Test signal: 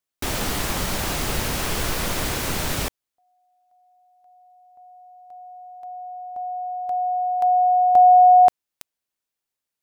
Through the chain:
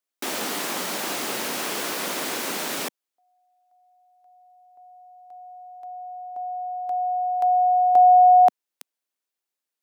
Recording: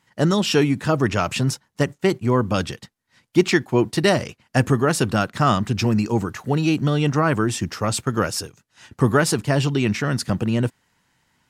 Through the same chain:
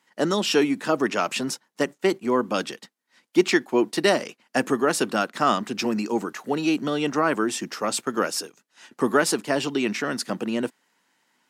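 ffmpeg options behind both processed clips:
-af "highpass=f=230:w=0.5412,highpass=f=230:w=1.3066,volume=0.841"

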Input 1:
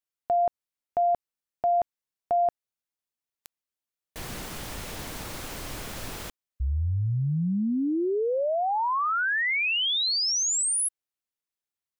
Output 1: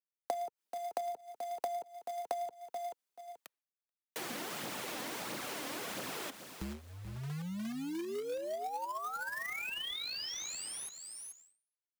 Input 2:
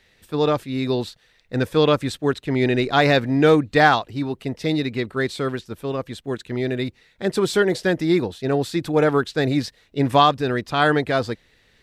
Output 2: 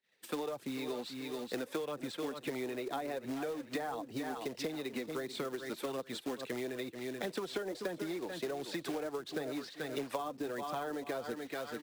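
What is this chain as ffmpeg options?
-filter_complex "[0:a]aphaser=in_gain=1:out_gain=1:delay=4.1:decay=0.44:speed=1.5:type=triangular,acrossover=split=170|3600[s0][s1][s2];[s0]acrusher=bits=2:mix=0:aa=0.5[s3];[s2]alimiter=level_in=1.68:limit=0.0631:level=0:latency=1:release=358,volume=0.596[s4];[s3][s1][s4]amix=inputs=3:normalize=0,acrusher=bits=3:mode=log:mix=0:aa=0.000001,asplit=2[s5][s6];[s6]aecho=0:1:433|866:0.2|0.0419[s7];[s5][s7]amix=inputs=2:normalize=0,acrossover=split=150|410|920|3800[s8][s9][s10][s11][s12];[s8]acompressor=threshold=0.00562:ratio=4[s13];[s9]acompressor=threshold=0.0224:ratio=4[s14];[s10]acompressor=threshold=0.0708:ratio=4[s15];[s11]acompressor=threshold=0.0141:ratio=4[s16];[s12]acompressor=threshold=0.00794:ratio=4[s17];[s13][s14][s15][s16][s17]amix=inputs=5:normalize=0,agate=range=0.0224:threshold=0.00355:ratio=3:release=415:detection=rms,acompressor=threshold=0.01:ratio=6:attack=32:release=209:knee=6:detection=peak,volume=1.12"

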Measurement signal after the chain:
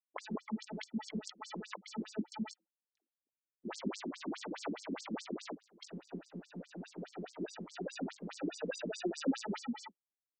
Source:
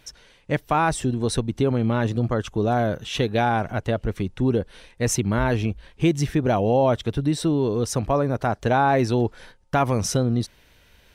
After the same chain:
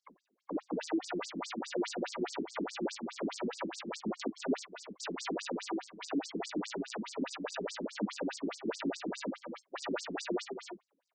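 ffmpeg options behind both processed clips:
-filter_complex "[0:a]equalizer=f=71:w=4.5:g=-5,aeval=exprs='abs(val(0))':c=same,bandreject=f=327.4:t=h:w=4,bandreject=f=654.8:t=h:w=4,bandreject=f=982.2:t=h:w=4,bandreject=f=1309.6:t=h:w=4,bandreject=f=1637:t=h:w=4,bandreject=f=1964.4:t=h:w=4,bandreject=f=2291.8:t=h:w=4,bandreject=f=2619.2:t=h:w=4,bandreject=f=2946.6:t=h:w=4,bandreject=f=3274:t=h:w=4,bandreject=f=3601.4:t=h:w=4,bandreject=f=3928.8:t=h:w=4,bandreject=f=4256.2:t=h:w=4,bandreject=f=4583.6:t=h:w=4,bandreject=f=4911:t=h:w=4,bandreject=f=5238.4:t=h:w=4,bandreject=f=5565.8:t=h:w=4,bandreject=f=5893.2:t=h:w=4,bandreject=f=6220.6:t=h:w=4,bandreject=f=6548:t=h:w=4,bandreject=f=6875.4:t=h:w=4,bandreject=f=7202.8:t=h:w=4,bandreject=f=7530.2:t=h:w=4,bandreject=f=7857.6:t=h:w=4,asplit=2[s0][s1];[s1]aecho=0:1:317:0.141[s2];[s0][s2]amix=inputs=2:normalize=0,agate=range=0.501:threshold=0.00501:ratio=16:detection=peak,afftdn=nr=13:nf=-33,asoftclip=type=tanh:threshold=0.0531,aemphasis=mode=reproduction:type=bsi,acrusher=samples=41:mix=1:aa=0.000001,flanger=delay=17.5:depth=2.4:speed=1.9,afftfilt=real='re*between(b*sr/1024,250*pow(6400/250,0.5+0.5*sin(2*PI*4.8*pts/sr))/1.41,250*pow(6400/250,0.5+0.5*sin(2*PI*4.8*pts/sr))*1.41)':imag='im*between(b*sr/1024,250*pow(6400/250,0.5+0.5*sin(2*PI*4.8*pts/sr))/1.41,250*pow(6400/250,0.5+0.5*sin(2*PI*4.8*pts/sr))*1.41)':win_size=1024:overlap=0.75,volume=3.98"

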